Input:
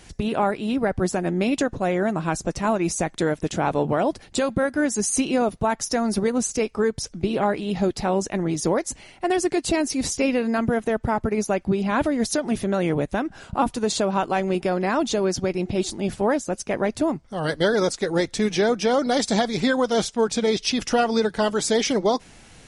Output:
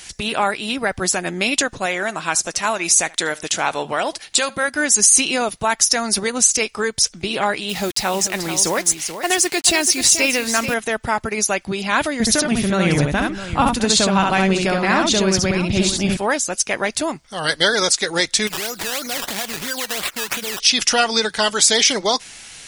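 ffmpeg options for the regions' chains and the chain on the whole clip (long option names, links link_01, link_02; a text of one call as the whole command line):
ffmpeg -i in.wav -filter_complex "[0:a]asettb=1/sr,asplit=3[link_01][link_02][link_03];[link_01]atrim=end=1.864[link_04];[link_02]atrim=start=1.86:end=4.68,asetpts=PTS-STARTPTS,afade=type=in:duration=0.004:curve=qsin,afade=type=out:start_time=2.816:duration=0.004:curve=qsin,lowshelf=frequency=270:gain=-8.5,aecho=1:1:74:0.0708,atrim=end_sample=124362[link_05];[link_03]atrim=start=4.676[link_06];[link_04][link_05]acrossfade=duration=0.004:curve1=hsin:curve2=qsin[link_07];[link_07][link_06]acrossfade=duration=0.004:curve1=qsin:curve2=hsin,asettb=1/sr,asplit=3[link_08][link_09][link_10];[link_08]atrim=end=7.694[link_11];[link_09]atrim=start=7.69:end=10.74,asetpts=PTS-STARTPTS,afade=type=in:duration=0.004:curve=qsin,afade=type=out:start_time=3.046:duration=0.004:curve=qsin,acrusher=bits=6:mix=0:aa=0.5,aecho=1:1:434:0.316,atrim=end_sample=134505[link_12];[link_10]atrim=start=10.736[link_13];[link_11][link_12]acrossfade=duration=0.004:curve1=hsin:curve2=qsin[link_14];[link_14][link_13]acrossfade=duration=0.004:curve1=qsin:curve2=hsin,asettb=1/sr,asplit=3[link_15][link_16][link_17];[link_15]atrim=end=12.204[link_18];[link_16]atrim=start=12.2:end=16.17,asetpts=PTS-STARTPTS,afade=type=in:duration=0.004:curve=qsin,afade=type=out:start_time=3.966:duration=0.004:curve=qsin,bass=frequency=250:gain=13,treble=frequency=4000:gain=-6,aecho=1:1:68|657:0.708|0.224,atrim=end_sample=175077[link_19];[link_17]atrim=start=16.166[link_20];[link_18][link_19]acrossfade=duration=0.004:curve1=hsin:curve2=qsin[link_21];[link_21][link_20]acrossfade=duration=0.004:curve1=qsin:curve2=hsin,asettb=1/sr,asplit=3[link_22][link_23][link_24];[link_22]atrim=end=18.474[link_25];[link_23]atrim=start=18.47:end=20.6,asetpts=PTS-STARTPTS,afade=type=in:duration=0.004:curve=qsin,afade=type=out:start_time=2.126:duration=0.004:curve=qsin,acompressor=threshold=-26dB:ratio=12:attack=3.2:release=140:knee=1:detection=peak,acrusher=samples=14:mix=1:aa=0.000001:lfo=1:lforange=14:lforate=3[link_26];[link_24]atrim=start=20.596[link_27];[link_25][link_26]acrossfade=duration=0.004:curve1=hsin:curve2=qsin[link_28];[link_28][link_27]acrossfade=duration=0.004:curve1=qsin:curve2=hsin,tiltshelf=frequency=1100:gain=-10,alimiter=level_in=6.5dB:limit=-1dB:release=50:level=0:latency=1,volume=-1dB" out.wav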